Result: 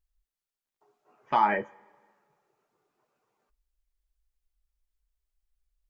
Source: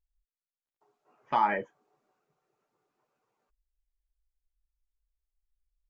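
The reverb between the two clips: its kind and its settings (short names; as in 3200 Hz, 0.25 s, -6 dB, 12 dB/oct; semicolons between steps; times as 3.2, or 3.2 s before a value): two-slope reverb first 0.22 s, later 1.7 s, from -19 dB, DRR 15 dB; gain +2.5 dB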